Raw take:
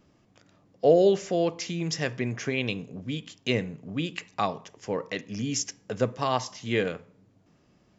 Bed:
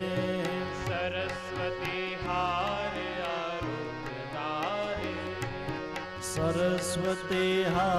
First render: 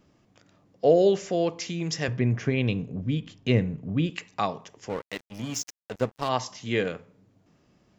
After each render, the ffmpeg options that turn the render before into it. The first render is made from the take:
-filter_complex "[0:a]asettb=1/sr,asplit=3[s0][s1][s2];[s0]atrim=end=2.084[s3];[s1]atrim=start=2.08:end=4.1,asetpts=PTS-STARTPTS,afade=t=in:d=0.004:c=qsin,afade=t=out:st=2.016:d=0.004:c=qsin,aemphasis=mode=reproduction:type=bsi[s4];[s2]atrim=start=4.096[s5];[s3][s4]acrossfade=d=0.004:c1=hsin:c2=qsin[s6];[s6][s5]acrossfade=d=0.004:c1=qsin:c2=hsin,asettb=1/sr,asplit=3[s7][s8][s9];[s7]atrim=end=4.894[s10];[s8]atrim=start=4.89:end=6.29,asetpts=PTS-STARTPTS,afade=t=in:d=0.004:c=qsin,afade=t=out:st=1.396:d=0.004:c=qsin,aeval=exprs='sgn(val(0))*max(abs(val(0))-0.015,0)':c=same[s11];[s9]atrim=start=6.286[s12];[s10][s11]acrossfade=d=0.004:c1=hsin:c2=qsin[s13];[s13][s12]acrossfade=d=0.004:c1=qsin:c2=hsin"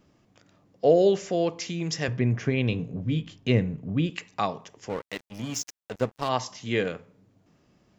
-filter_complex "[0:a]asettb=1/sr,asplit=3[s0][s1][s2];[s0]atrim=end=2.704[s3];[s1]atrim=start=2.7:end=3.38,asetpts=PTS-STARTPTS,afade=t=in:d=0.004:c=qsin,afade=t=out:st=0.676:d=0.004:c=qsin,asplit=2[s4][s5];[s5]adelay=18,volume=0.447[s6];[s4][s6]amix=inputs=2:normalize=0,atrim=end_sample=29988[s7];[s2]atrim=start=3.376[s8];[s3][s7]acrossfade=d=0.004:c1=hsin:c2=qsin[s9];[s9][s8]acrossfade=d=0.004:c1=qsin:c2=hsin"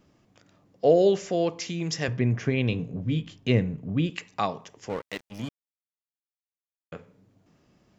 -filter_complex "[0:a]asplit=3[s0][s1][s2];[s0]atrim=end=5.49,asetpts=PTS-STARTPTS,afade=t=out:st=5.486:d=0.004:c=hsin[s3];[s1]atrim=start=5.49:end=6.92,asetpts=PTS-STARTPTS,volume=0[s4];[s2]atrim=start=6.92,asetpts=PTS-STARTPTS,afade=t=in:d=0.004:c=hsin[s5];[s3][s4][s5]concat=n=3:v=0:a=1"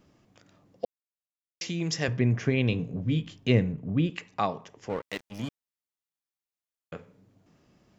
-filter_complex "[0:a]asettb=1/sr,asplit=3[s0][s1][s2];[s0]atrim=end=3.724[s3];[s1]atrim=start=3.72:end=5.02,asetpts=PTS-STARTPTS,afade=t=in:d=0.004:c=qsin,afade=t=out:st=1.296:d=0.004:c=qsin,highshelf=f=3800:g=-8[s4];[s2]atrim=start=5.016[s5];[s3][s4]acrossfade=d=0.004:c1=hsin:c2=qsin[s6];[s6][s5]acrossfade=d=0.004:c1=qsin:c2=hsin,asplit=3[s7][s8][s9];[s7]atrim=end=0.85,asetpts=PTS-STARTPTS,afade=t=out:st=0.846:d=0.004:c=hsin[s10];[s8]atrim=start=0.85:end=1.61,asetpts=PTS-STARTPTS,volume=0[s11];[s9]atrim=start=1.61,asetpts=PTS-STARTPTS,afade=t=in:d=0.004:c=hsin[s12];[s10][s11][s12]concat=n=3:v=0:a=1"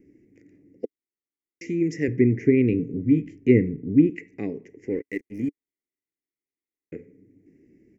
-af "firequalizer=gain_entry='entry(180,0);entry(290,13);entry(420,9);entry(620,-15);entry(1200,-30);entry(2000,6);entry(3400,-27);entry(5600,-11);entry(9200,-8)':delay=0.05:min_phase=1"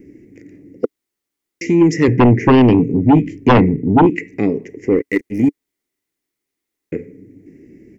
-af "aeval=exprs='0.562*sin(PI/2*3.16*val(0)/0.562)':c=same"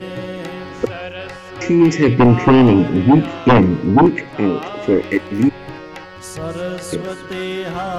-filter_complex "[1:a]volume=1.41[s0];[0:a][s0]amix=inputs=2:normalize=0"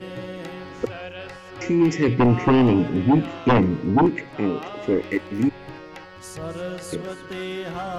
-af "volume=0.473"

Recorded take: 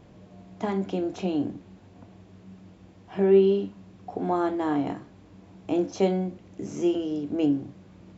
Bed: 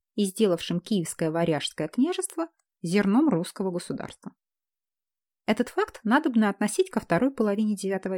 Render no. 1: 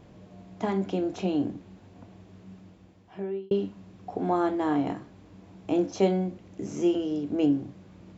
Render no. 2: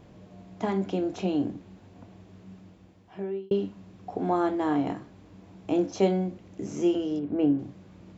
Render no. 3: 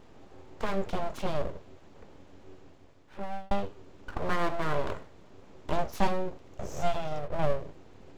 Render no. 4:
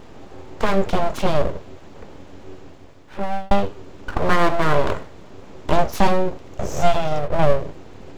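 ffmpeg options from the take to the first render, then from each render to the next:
-filter_complex "[0:a]asplit=2[s0][s1];[s0]atrim=end=3.51,asetpts=PTS-STARTPTS,afade=t=out:st=2.52:d=0.99[s2];[s1]atrim=start=3.51,asetpts=PTS-STARTPTS,afade=t=in:d=0.004:c=hsin[s3];[s2][s3]concat=n=2:v=0:a=1"
-filter_complex "[0:a]asettb=1/sr,asplit=3[s0][s1][s2];[s0]atrim=end=7.194[s3];[s1]atrim=start=7.19:end=7.59,asetpts=PTS-STARTPTS,afade=t=in:d=0.004:c=qsin,afade=t=out:st=0.396:d=0.004:c=qsin,lowpass=2200[s4];[s2]atrim=start=7.586[s5];[s3][s4]acrossfade=d=0.004:c1=hsin:c2=qsin[s6];[s6][s5]acrossfade=d=0.004:c1=qsin:c2=hsin"
-af "aeval=exprs='abs(val(0))':c=same"
-af "volume=3.98,alimiter=limit=0.708:level=0:latency=1"

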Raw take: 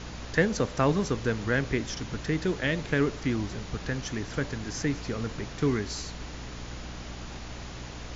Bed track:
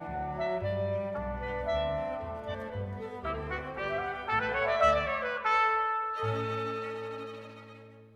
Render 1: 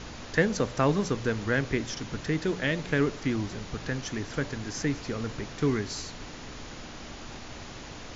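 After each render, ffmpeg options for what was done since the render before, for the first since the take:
-af "bandreject=f=60:t=h:w=4,bandreject=f=120:t=h:w=4,bandreject=f=180:t=h:w=4"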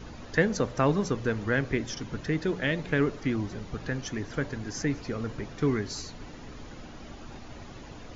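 -af "afftdn=nr=9:nf=-43"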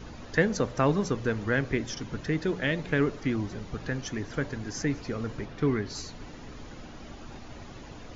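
-filter_complex "[0:a]asettb=1/sr,asplit=3[s0][s1][s2];[s0]atrim=end=5.454[s3];[s1]atrim=start=5.45:end=5.95,asetpts=PTS-STARTPTS,afade=t=in:d=0.004:c=qsin,afade=t=out:st=0.496:d=0.004:c=qsin,lowpass=4600[s4];[s2]atrim=start=5.946[s5];[s3][s4]acrossfade=d=0.004:c1=hsin:c2=qsin[s6];[s6][s5]acrossfade=d=0.004:c1=qsin:c2=hsin"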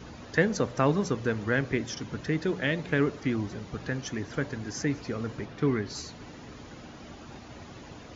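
-af "highpass=66"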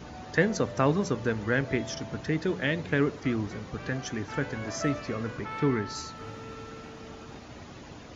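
-filter_complex "[1:a]volume=0.266[s0];[0:a][s0]amix=inputs=2:normalize=0"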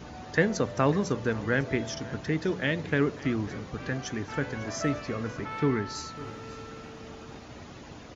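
-af "aecho=1:1:549:0.112"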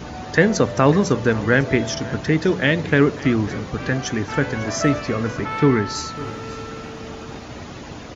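-af "volume=3.16,alimiter=limit=0.794:level=0:latency=1"

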